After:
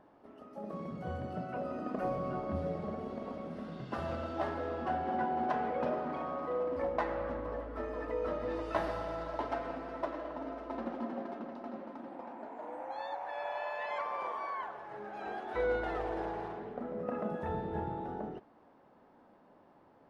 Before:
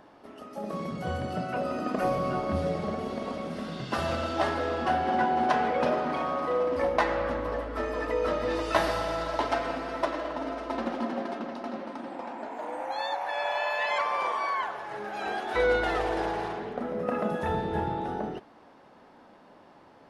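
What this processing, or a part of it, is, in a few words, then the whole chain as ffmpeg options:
through cloth: -af "highshelf=f=2.4k:g=-14,volume=-6.5dB"

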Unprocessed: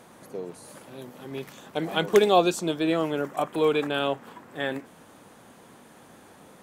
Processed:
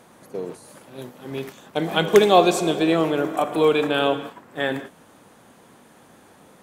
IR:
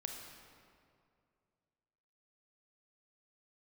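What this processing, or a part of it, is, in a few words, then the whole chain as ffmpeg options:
keyed gated reverb: -filter_complex "[0:a]asplit=3[a][b][c];[1:a]atrim=start_sample=2205[d];[b][d]afir=irnorm=-1:irlink=0[e];[c]apad=whole_len=292278[f];[e][f]sidechaingate=range=-33dB:threshold=-40dB:ratio=16:detection=peak,volume=0.5dB[g];[a][g]amix=inputs=2:normalize=0"

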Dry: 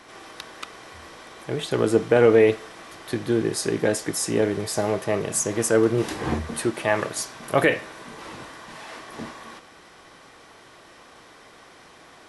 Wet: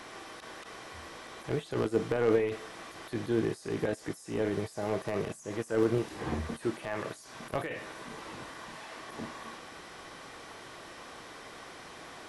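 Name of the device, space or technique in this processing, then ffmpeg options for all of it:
de-esser from a sidechain: -filter_complex "[0:a]asplit=2[a][b];[b]highpass=4.4k,apad=whole_len=541679[c];[a][c]sidechaincompress=threshold=-57dB:ratio=6:attack=0.5:release=21,volume=4.5dB"

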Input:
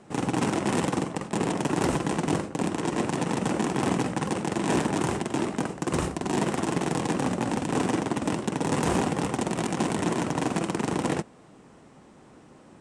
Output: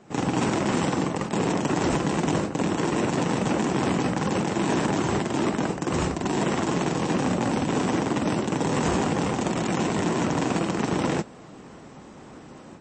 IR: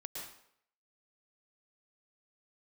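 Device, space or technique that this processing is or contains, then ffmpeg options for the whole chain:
low-bitrate web radio: -af "dynaudnorm=f=140:g=3:m=8dB,alimiter=limit=-14.5dB:level=0:latency=1:release=31" -ar 22050 -c:a libmp3lame -b:a 32k

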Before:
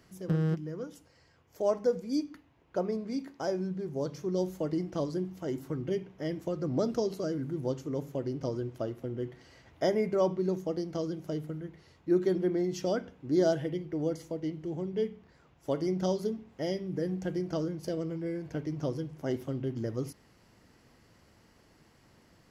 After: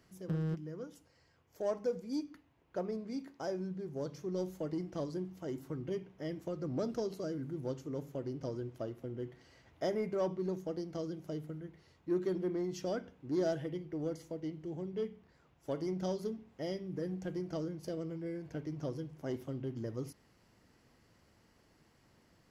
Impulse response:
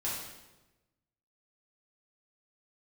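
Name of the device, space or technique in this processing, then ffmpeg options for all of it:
parallel distortion: -filter_complex "[0:a]asplit=2[a][b];[b]asoftclip=type=hard:threshold=-28.5dB,volume=-8dB[c];[a][c]amix=inputs=2:normalize=0,volume=-8.5dB"

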